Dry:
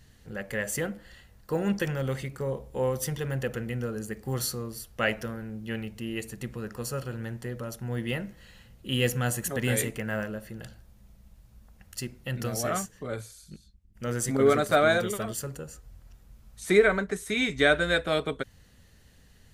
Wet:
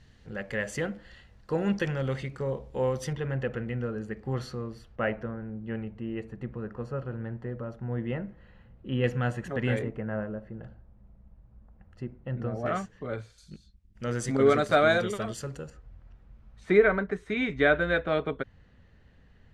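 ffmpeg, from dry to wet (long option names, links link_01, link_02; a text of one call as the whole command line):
ffmpeg -i in.wav -af "asetnsamples=nb_out_samples=441:pad=0,asendcmd='3.13 lowpass f 2500;4.96 lowpass f 1400;9.04 lowpass f 2300;9.79 lowpass f 1100;12.66 lowpass f 2900;13.38 lowpass f 5600;15.7 lowpass f 2200',lowpass=4800" out.wav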